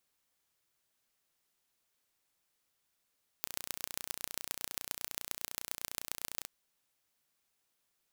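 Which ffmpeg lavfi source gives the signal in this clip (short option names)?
-f lavfi -i "aevalsrc='0.422*eq(mod(n,1475),0)*(0.5+0.5*eq(mod(n,5900),0))':d=3.02:s=44100"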